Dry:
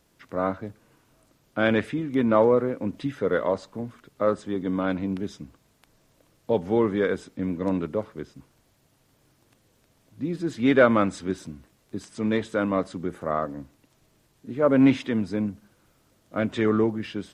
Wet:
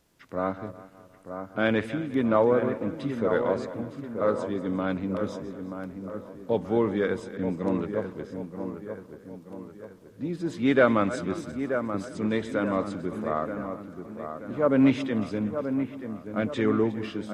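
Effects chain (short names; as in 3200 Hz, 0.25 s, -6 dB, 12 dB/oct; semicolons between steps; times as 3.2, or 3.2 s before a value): regenerating reverse delay 0.18 s, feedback 52%, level -14 dB; dark delay 0.931 s, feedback 47%, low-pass 1800 Hz, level -8 dB; gain -2.5 dB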